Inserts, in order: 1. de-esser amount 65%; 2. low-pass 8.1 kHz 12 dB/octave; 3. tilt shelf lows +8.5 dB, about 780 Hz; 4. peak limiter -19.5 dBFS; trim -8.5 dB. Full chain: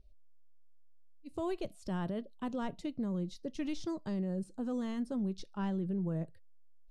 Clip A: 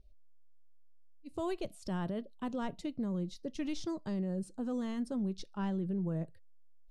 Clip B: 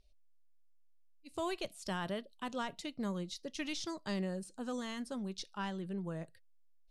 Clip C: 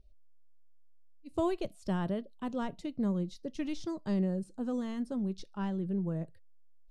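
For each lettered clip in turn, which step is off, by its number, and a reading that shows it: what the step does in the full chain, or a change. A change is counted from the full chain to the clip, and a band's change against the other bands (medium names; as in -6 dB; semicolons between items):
1, 8 kHz band +2.5 dB; 3, 125 Hz band -10.0 dB; 4, crest factor change +6.5 dB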